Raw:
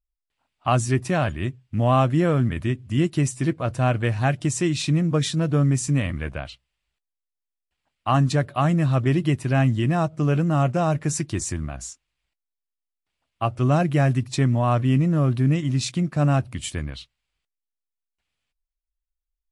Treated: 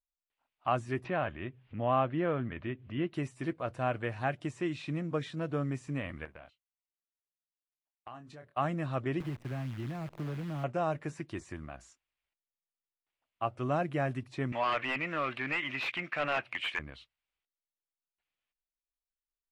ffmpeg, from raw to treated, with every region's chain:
-filter_complex "[0:a]asettb=1/sr,asplit=3[s0][s1][s2];[s0]atrim=end=1.044[s3];[s1]atrim=start=1.04:end=3.14,asetpts=PTS-STARTPTS,afade=t=in:d=0.004:c=qsin,afade=t=out:st=2.096:d=0.004:c=qsin,lowpass=f=3600:w=0.5412,lowpass=f=3600:w=1.3066,acompressor=mode=upward:threshold=0.0562:ratio=2.5:attack=3.2:release=140:knee=2.83:detection=peak[s4];[s2]atrim=start=3.136[s5];[s3][s4]acrossfade=d=0.004:c1=hsin:c2=qsin[s6];[s6][s5]acrossfade=d=0.004:c1=qsin:c2=hsin,asettb=1/sr,asplit=3[s7][s8][s9];[s7]atrim=end=6.254[s10];[s8]atrim=start=6.25:end=8.57,asetpts=PTS-STARTPTS,afade=t=in:d=0.004:c=qsin,afade=t=out:st=2.316:d=0.004:c=qsin,agate=range=0.1:threshold=0.0158:ratio=16:release=100:detection=peak,asplit=2[s11][s12];[s12]adelay=26,volume=0.376[s13];[s11][s13]amix=inputs=2:normalize=0,atrim=end_sample=102312,acompressor=threshold=0.02:ratio=10:attack=3.2:release=140:knee=1:detection=peak[s14];[s9]atrim=start=8.566[s15];[s10][s14]acrossfade=d=0.004:c1=hsin:c2=qsin[s16];[s16][s15]acrossfade=d=0.004:c1=qsin:c2=hsin,asettb=1/sr,asplit=3[s17][s18][s19];[s17]atrim=end=9.204[s20];[s18]atrim=start=9.2:end=10.64,asetpts=PTS-STARTPTS,afade=t=in:d=0.004:c=qsin,afade=t=out:st=1.436:d=0.004:c=qsin,aemphasis=mode=reproduction:type=bsi,acrossover=split=100|330[s21][s22][s23];[s21]acompressor=threshold=0.0316:ratio=4[s24];[s22]acompressor=threshold=0.0562:ratio=4[s25];[s23]acompressor=threshold=0.0126:ratio=4[s26];[s24][s25][s26]amix=inputs=3:normalize=0,acrusher=bits=7:dc=4:mix=0:aa=0.000001[s27];[s19]atrim=start=10.636[s28];[s20][s27]acrossfade=d=0.004:c1=hsin:c2=qsin[s29];[s29][s28]acrossfade=d=0.004:c1=qsin:c2=hsin,asettb=1/sr,asplit=3[s30][s31][s32];[s30]atrim=end=14.524[s33];[s31]atrim=start=14.52:end=16.79,asetpts=PTS-STARTPTS,afade=t=in:d=0.004:c=qsin,afade=t=out:st=2.266:d=0.004:c=qsin,bandpass=f=2400:t=q:w=2.3,aeval=exprs='0.168*sin(PI/2*7.94*val(0)/0.168)':c=same[s34];[s32]atrim=start=16.786[s35];[s33][s34]acrossfade=d=0.004:c1=hsin:c2=qsin[s36];[s36][s35]acrossfade=d=0.004:c1=qsin:c2=hsin,acrossover=split=2900[s37][s38];[s38]acompressor=threshold=0.00891:ratio=4:attack=1:release=60[s39];[s37][s39]amix=inputs=2:normalize=0,bass=f=250:g=-10,treble=f=4000:g=-9,volume=0.422"

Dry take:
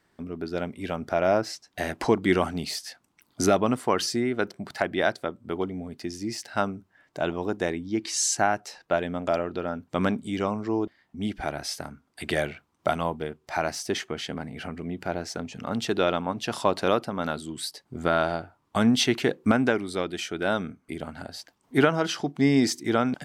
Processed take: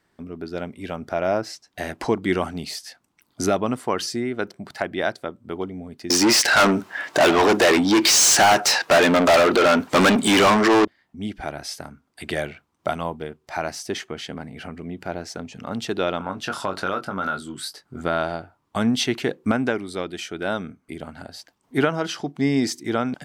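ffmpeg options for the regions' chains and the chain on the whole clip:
-filter_complex "[0:a]asettb=1/sr,asplit=3[s0][s1][s2];[s0]atrim=end=6.104[s3];[s1]atrim=start=6.1:end=10.85,asetpts=PTS-STARTPTS,afade=t=in:d=0.004:c=qsin,afade=t=out:st=4.746:d=0.004:c=qsin,asplit=2[s4][s5];[s5]highpass=f=720:p=1,volume=70.8,asoftclip=type=tanh:threshold=0.447[s6];[s4][s6]amix=inputs=2:normalize=0,lowpass=f=6900:p=1,volume=0.501,lowshelf=f=120:g=-8.5[s7];[s2]atrim=start=10.846[s8];[s3][s7]acrossfade=d=0.004:c1=hsin:c2=qsin[s9];[s9][s8]acrossfade=d=0.004:c1=qsin:c2=hsin,asettb=1/sr,asplit=3[s10][s11][s12];[s10]atrim=end=16.184[s13];[s11]atrim=start=16.18:end=18.01,asetpts=PTS-STARTPTS,afade=t=in:d=0.004:c=qsin,afade=t=out:st=1.826:d=0.004:c=qsin,equalizer=f=1400:w=3.8:g=13,asplit=2[s14][s15];[s15]adelay=21,volume=0.447[s16];[s14][s16]amix=inputs=2:normalize=0,atrim=end_sample=80703,acompressor=threshold=0.0794:ratio=2.5:attack=3.2:release=140:knee=1:detection=peak[s17];[s12]atrim=start=18.006[s18];[s13][s17]acrossfade=d=0.004:c1=hsin:c2=qsin[s19];[s19][s18]acrossfade=d=0.004:c1=qsin:c2=hsin"

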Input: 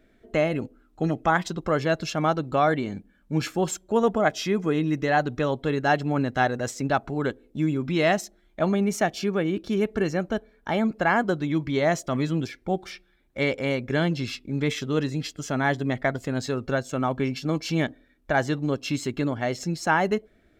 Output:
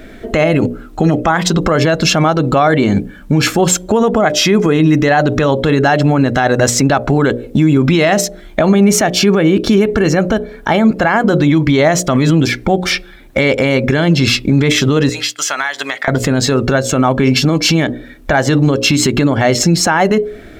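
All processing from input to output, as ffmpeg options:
-filter_complex "[0:a]asettb=1/sr,asplit=3[s0][s1][s2];[s0]atrim=end=15.094[s3];[s1]atrim=start=15.09:end=16.08,asetpts=PTS-STARTPTS,afade=t=in:d=0.004:c=qsin,afade=t=out:st=0.986:d=0.004:c=qsin,agate=range=0.0224:threshold=0.00562:ratio=3:release=100:detection=peak,highpass=1300,acompressor=threshold=0.0112:ratio=16:attack=3.2:release=140:knee=1:detection=peak[s4];[s2]atrim=start=16.076[s5];[s3][s4]acrossfade=d=0.004:c1=hsin:c2=qsin[s6];[s6][s5]acrossfade=d=0.004:c1=qsin:c2=hsin,bandreject=f=60:t=h:w=6,bandreject=f=120:t=h:w=6,bandreject=f=180:t=h:w=6,bandreject=f=240:t=h:w=6,bandreject=f=300:t=h:w=6,bandreject=f=360:t=h:w=6,bandreject=f=420:t=h:w=6,bandreject=f=480:t=h:w=6,bandreject=f=540:t=h:w=6,bandreject=f=600:t=h:w=6,acompressor=threshold=0.0251:ratio=2.5,alimiter=level_in=25.1:limit=0.891:release=50:level=0:latency=1,volume=0.841"

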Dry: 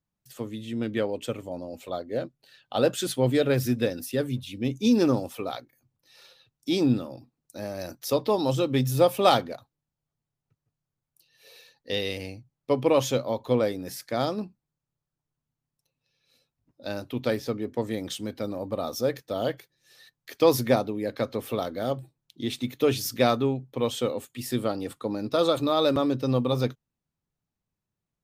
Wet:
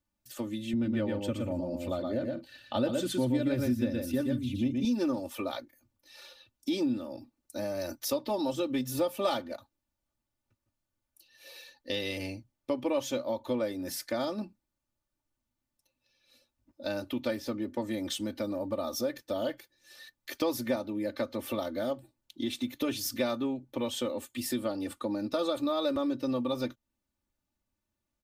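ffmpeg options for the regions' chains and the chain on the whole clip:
-filter_complex "[0:a]asettb=1/sr,asplit=3[s0][s1][s2];[s0]atrim=end=0.734[s3];[s1]atrim=start=0.73:end=4.85,asetpts=PTS-STARTPTS,afade=t=in:d=0.004:c=qsin,afade=t=out:st=4.116:d=0.004:c=qsin,highpass=54,bass=f=250:g=13,treble=f=4000:g=-3,aecho=1:1:119|167:0.596|0.106,atrim=end_sample=181692[s4];[s2]atrim=start=4.846[s5];[s3][s4]acrossfade=d=0.004:c1=hsin:c2=qsin[s6];[s6][s5]acrossfade=d=0.004:c1=qsin:c2=hsin,aecho=1:1:3.4:0.86,acompressor=threshold=0.0251:ratio=2.5"

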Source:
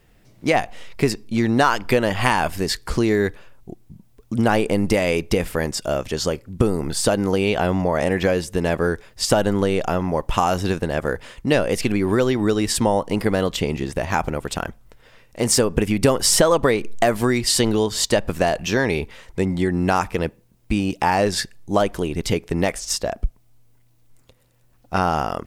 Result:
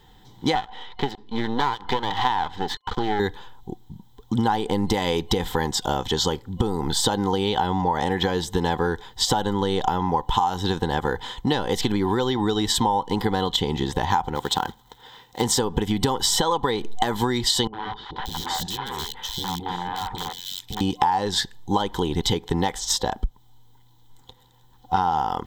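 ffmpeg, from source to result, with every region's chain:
-filter_complex "[0:a]asettb=1/sr,asplit=3[s0][s1][s2];[s0]atrim=end=0.554[s3];[s1]atrim=start=0.55:end=3.2,asetpts=PTS-STARTPTS,afade=t=in:d=0.004:c=qsin,afade=t=out:st=2.646:d=0.004:c=qsin,lowpass=2800,lowshelf=f=240:g=-7.5,aeval=exprs='max(val(0),0)':c=same[s4];[s2]atrim=start=3.196[s5];[s3][s4]acrossfade=d=0.004:c1=hsin:c2=qsin[s6];[s6][s5]acrossfade=d=0.004:c1=qsin:c2=hsin,asettb=1/sr,asplit=3[s7][s8][s9];[s7]atrim=end=14.354[s10];[s8]atrim=start=14.35:end=15.42,asetpts=PTS-STARTPTS,afade=t=in:d=0.004:c=qsin,afade=t=out:st=1.066:d=0.004:c=qsin,acrusher=bits=4:mode=log:mix=0:aa=0.000001,highpass=f=130:p=1[s11];[s9]atrim=start=15.416[s12];[s10][s11]acrossfade=d=0.004:c1=hsin:c2=qsin[s13];[s13][s12]acrossfade=d=0.004:c1=qsin:c2=hsin,asettb=1/sr,asplit=3[s14][s15][s16];[s14]atrim=end=17.674[s17];[s15]atrim=start=17.67:end=20.81,asetpts=PTS-STARTPTS,afade=t=in:d=0.004:c=qsin,afade=t=out:st=3.136:d=0.004:c=qsin,aeval=exprs='(mod(5.62*val(0)+1,2)-1)/5.62':c=same,acompressor=threshold=0.0316:ratio=16:attack=3.2:release=140:knee=1:detection=peak,acrossover=split=490|2700[s18][s19][s20];[s19]adelay=60[s21];[s20]adelay=580[s22];[s18][s21][s22]amix=inputs=3:normalize=0,atrim=end_sample=138474[s23];[s16]atrim=start=20.806[s24];[s17][s23]acrossfade=d=0.004:c1=hsin:c2=qsin[s25];[s25][s24]acrossfade=d=0.004:c1=qsin:c2=hsin,superequalizer=8b=0.355:9b=3.55:12b=0.447:13b=3.16:16b=0.355,acompressor=threshold=0.0891:ratio=6,volume=1.33"

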